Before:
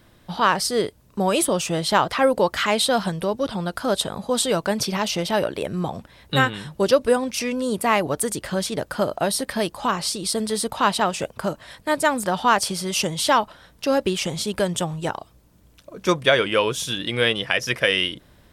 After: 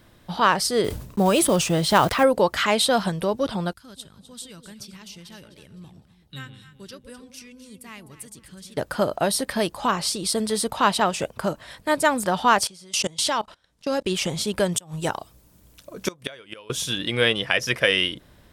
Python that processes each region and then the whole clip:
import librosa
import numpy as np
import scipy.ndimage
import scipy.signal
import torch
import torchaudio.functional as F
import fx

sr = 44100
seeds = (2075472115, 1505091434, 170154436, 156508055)

y = fx.chain(x, sr, fx.block_float(bits=5),
    fx.low_shelf(hz=250.0, db=5.5),
    fx.sustainer(db_per_s=78.0), at=(0.84, 2.24))
y = fx.chain(y, sr, fx.tone_stack(knobs='6-0-2'),
    fx.echo_alternate(ms=127, hz=810.0, feedback_pct=58, wet_db=-8), at=(3.73, 8.77))
y = fx.chain(y, sr, fx.lowpass(hz=7900.0, slope=12),
    fx.high_shelf(hz=4300.0, db=10.0),
    fx.level_steps(step_db=23), at=(12.67, 14.12))
y = fx.chain(y, sr, fx.high_shelf(hz=5300.0, db=8.5),
    fx.gate_flip(shuts_db=-10.0, range_db=-26), at=(14.72, 16.7))